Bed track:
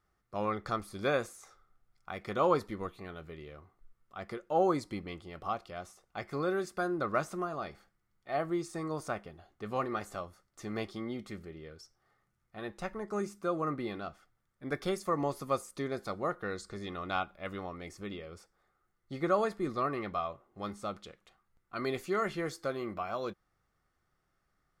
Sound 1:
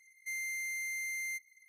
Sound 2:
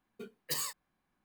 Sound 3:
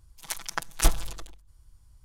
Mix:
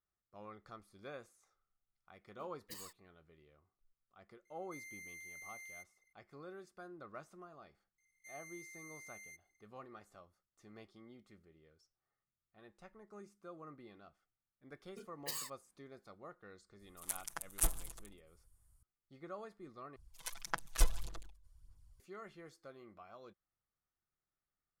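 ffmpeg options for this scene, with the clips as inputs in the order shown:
-filter_complex "[2:a]asplit=2[s0][s1];[1:a]asplit=2[s2][s3];[3:a]asplit=2[s4][s5];[0:a]volume=0.112[s6];[s3]equalizer=f=7300:t=o:w=0.24:g=13[s7];[s4]highshelf=f=7000:t=q:w=1.5:g=9.5[s8];[s5]aphaser=in_gain=1:out_gain=1:delay=2:decay=0.52:speed=1.7:type=sinusoidal[s9];[s6]asplit=2[s10][s11];[s10]atrim=end=19.964[s12];[s9]atrim=end=2.04,asetpts=PTS-STARTPTS,volume=0.237[s13];[s11]atrim=start=21.996[s14];[s0]atrim=end=1.24,asetpts=PTS-STARTPTS,volume=0.168,afade=t=in:d=0.004:c=hsin,afade=t=out:st=1.236:d=0.004:c=hsin,adelay=2200[s15];[s2]atrim=end=1.68,asetpts=PTS-STARTPTS,volume=0.2,afade=t=in:d=0.004:c=hsin,afade=t=out:st=1.676:d=0.004:c=hsin,adelay=196245S[s16];[s7]atrim=end=1.68,asetpts=PTS-STARTPTS,volume=0.141,afade=t=in:d=0.004:c=hsin,afade=t=out:st=1.676:d=0.004:c=hsin,adelay=7980[s17];[s1]atrim=end=1.24,asetpts=PTS-STARTPTS,volume=0.447,afade=t=in:d=0.004:c=hsin,afade=t=out:st=1.236:d=0.004:c=hsin,adelay=14770[s18];[s8]atrim=end=2.04,asetpts=PTS-STARTPTS,volume=0.188,afade=t=in:d=0.004:c=hsin,afade=t=out:st=2.036:d=0.004:c=hsin,adelay=16790[s19];[s12][s13]acrossfade=d=0.004:c1=hsin:c2=hsin[s20];[s20][s14]acrossfade=d=0.004:c1=hsin:c2=hsin[s21];[s21][s15][s16][s17][s18][s19]amix=inputs=6:normalize=0"

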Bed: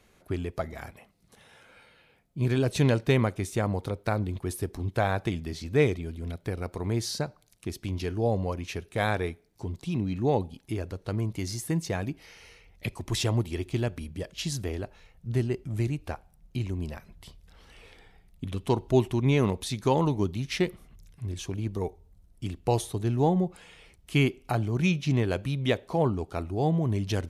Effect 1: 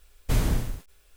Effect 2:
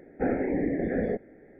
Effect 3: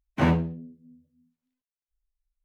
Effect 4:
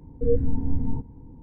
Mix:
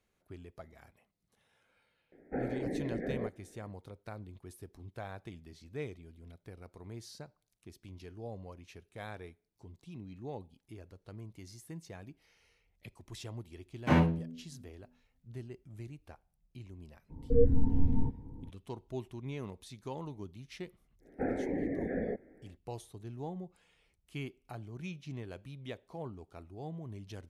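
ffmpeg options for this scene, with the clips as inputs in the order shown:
-filter_complex "[2:a]asplit=2[s0][s1];[0:a]volume=0.133[s2];[3:a]highpass=41[s3];[s0]atrim=end=1.59,asetpts=PTS-STARTPTS,volume=0.355,afade=t=in:d=0.004:c=hsin,afade=t=out:st=1.586:d=0.004:c=hsin,adelay=2120[s4];[s3]atrim=end=2.44,asetpts=PTS-STARTPTS,volume=0.668,afade=t=in:d=0.004:c=hsin,afade=t=out:st=2.436:d=0.004:c=hsin,adelay=13690[s5];[4:a]atrim=end=1.42,asetpts=PTS-STARTPTS,volume=0.75,afade=t=in:d=0.02,afade=t=out:st=1.4:d=0.02,adelay=17090[s6];[s1]atrim=end=1.59,asetpts=PTS-STARTPTS,volume=0.447,afade=t=in:d=0.1,afade=t=out:st=1.49:d=0.1,adelay=20990[s7];[s2][s4][s5][s6][s7]amix=inputs=5:normalize=0"

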